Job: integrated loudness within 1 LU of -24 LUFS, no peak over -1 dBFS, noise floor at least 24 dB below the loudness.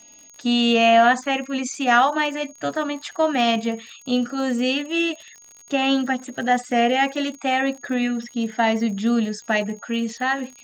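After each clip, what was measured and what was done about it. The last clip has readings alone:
tick rate 52 per s; steady tone 6.6 kHz; tone level -46 dBFS; loudness -21.5 LUFS; peak level -4.5 dBFS; loudness target -24.0 LUFS
-> de-click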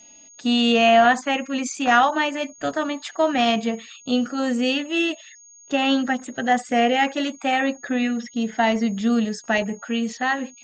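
tick rate 0 per s; steady tone 6.6 kHz; tone level -46 dBFS
-> band-stop 6.6 kHz, Q 30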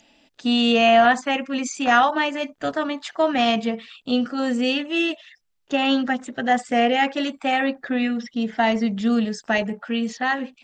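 steady tone not found; loudness -21.5 LUFS; peak level -4.5 dBFS; loudness target -24.0 LUFS
-> trim -2.5 dB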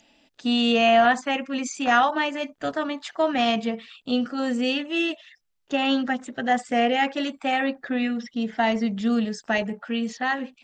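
loudness -24.0 LUFS; peak level -7.0 dBFS; noise floor -69 dBFS

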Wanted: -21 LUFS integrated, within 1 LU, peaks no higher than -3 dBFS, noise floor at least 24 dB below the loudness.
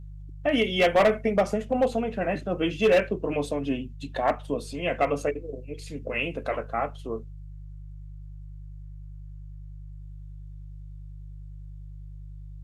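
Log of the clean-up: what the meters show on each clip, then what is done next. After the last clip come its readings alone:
clipped samples 0.4%; clipping level -14.5 dBFS; hum 50 Hz; highest harmonic 150 Hz; hum level -38 dBFS; loudness -26.5 LUFS; peak level -14.5 dBFS; loudness target -21.0 LUFS
-> clip repair -14.5 dBFS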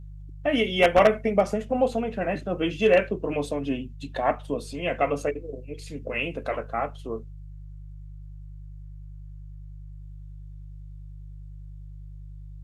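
clipped samples 0.0%; hum 50 Hz; highest harmonic 150 Hz; hum level -38 dBFS
-> de-hum 50 Hz, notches 3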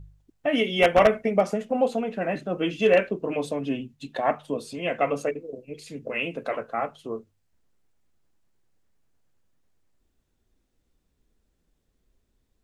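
hum not found; loudness -25.5 LUFS; peak level -5.5 dBFS; loudness target -21.0 LUFS
-> trim +4.5 dB; peak limiter -3 dBFS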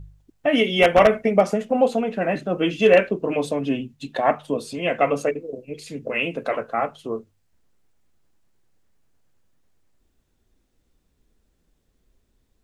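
loudness -21.0 LUFS; peak level -3.0 dBFS; noise floor -69 dBFS

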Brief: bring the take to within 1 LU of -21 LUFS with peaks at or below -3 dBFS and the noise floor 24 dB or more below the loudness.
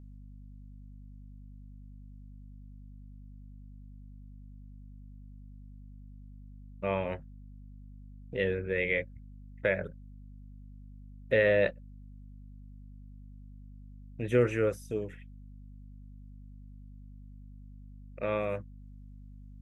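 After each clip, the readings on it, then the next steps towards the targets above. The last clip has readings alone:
hum 50 Hz; highest harmonic 250 Hz; hum level -46 dBFS; loudness -31.0 LUFS; peak level -13.0 dBFS; loudness target -21.0 LUFS
-> hum notches 50/100/150/200/250 Hz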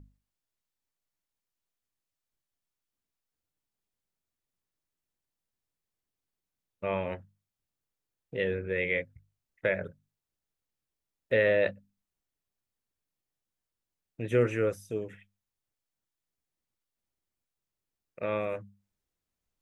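hum not found; loudness -30.5 LUFS; peak level -13.0 dBFS; loudness target -21.0 LUFS
-> trim +9.5 dB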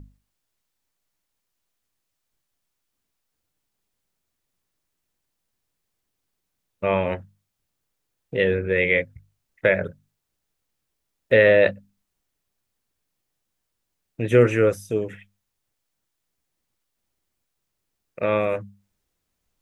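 loudness -21.0 LUFS; peak level -3.5 dBFS; noise floor -79 dBFS

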